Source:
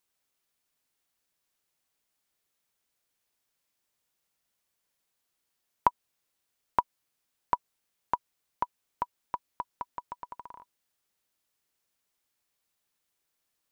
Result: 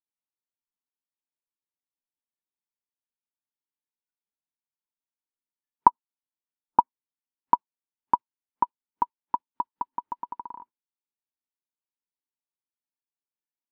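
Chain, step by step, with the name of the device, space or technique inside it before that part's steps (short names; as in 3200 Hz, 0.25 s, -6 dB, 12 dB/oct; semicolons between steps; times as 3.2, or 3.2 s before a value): 5.88–6.79 steep low-pass 1600 Hz 72 dB/oct; spectral noise reduction 23 dB; inside a cardboard box (LPF 2900 Hz 12 dB/oct; small resonant body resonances 260/900 Hz, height 16 dB, ringing for 20 ms); gain -5.5 dB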